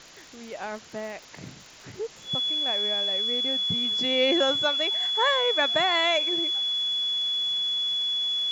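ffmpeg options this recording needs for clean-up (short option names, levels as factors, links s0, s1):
-af "adeclick=t=4,bandreject=f=3400:w=30,afwtdn=0.0056"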